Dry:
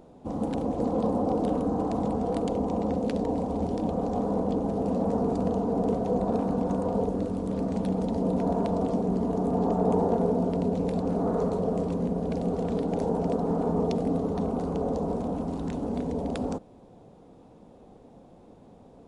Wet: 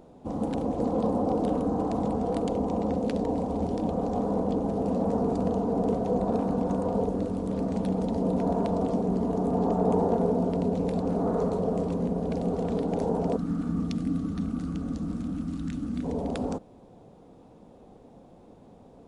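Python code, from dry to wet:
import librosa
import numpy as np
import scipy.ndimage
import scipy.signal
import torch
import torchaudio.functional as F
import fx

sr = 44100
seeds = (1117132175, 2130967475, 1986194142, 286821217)

y = fx.spec_box(x, sr, start_s=13.37, length_s=2.67, low_hz=330.0, high_hz=1100.0, gain_db=-18)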